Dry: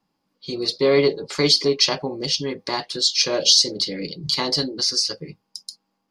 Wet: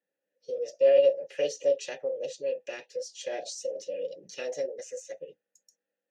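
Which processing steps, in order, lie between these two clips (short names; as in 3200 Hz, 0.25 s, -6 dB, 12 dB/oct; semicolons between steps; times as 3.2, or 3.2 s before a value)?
formant shift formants +5 st; vowel filter e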